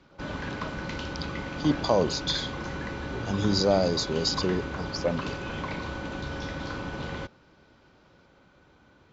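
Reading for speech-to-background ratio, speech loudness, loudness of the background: 7.5 dB, -27.5 LUFS, -35.0 LUFS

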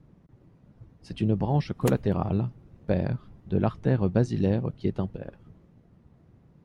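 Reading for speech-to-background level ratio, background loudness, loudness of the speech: 8.5 dB, -36.0 LUFS, -27.5 LUFS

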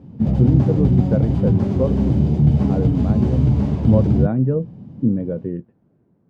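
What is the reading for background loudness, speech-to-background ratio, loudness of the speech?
-18.0 LUFS, -5.0 dB, -23.0 LUFS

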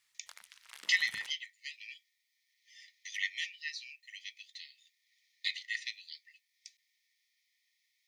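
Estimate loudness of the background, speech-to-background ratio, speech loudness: -52.5 LUFS, 16.0 dB, -36.5 LUFS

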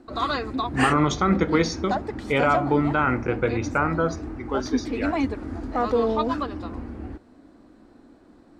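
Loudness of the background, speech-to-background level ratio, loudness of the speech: -28.5 LUFS, 4.0 dB, -24.5 LUFS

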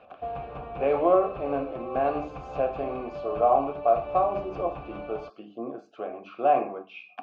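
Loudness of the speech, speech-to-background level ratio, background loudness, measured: -27.5 LUFS, 10.5 dB, -38.0 LUFS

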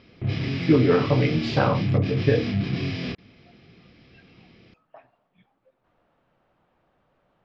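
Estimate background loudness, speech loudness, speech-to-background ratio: -27.5 LUFS, -23.0 LUFS, 4.5 dB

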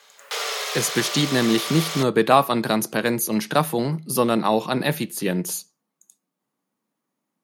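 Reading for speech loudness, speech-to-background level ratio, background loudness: -22.0 LUFS, 5.5 dB, -27.5 LUFS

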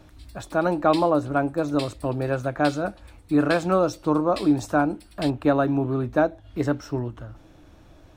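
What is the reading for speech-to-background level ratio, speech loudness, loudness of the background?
17.0 dB, -24.0 LUFS, -41.0 LUFS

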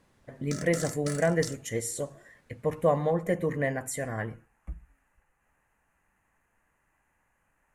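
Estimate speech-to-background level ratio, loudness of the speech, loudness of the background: 9.5 dB, -30.0 LUFS, -39.5 LUFS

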